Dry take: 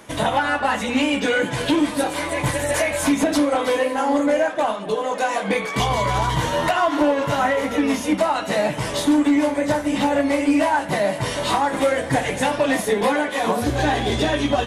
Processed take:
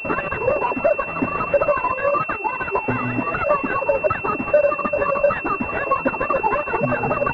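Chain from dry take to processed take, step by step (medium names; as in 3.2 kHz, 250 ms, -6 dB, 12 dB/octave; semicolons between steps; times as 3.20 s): reverb removal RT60 1.5 s; speed mistake 7.5 ips tape played at 15 ips; class-D stage that switches slowly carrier 2.7 kHz; trim +3.5 dB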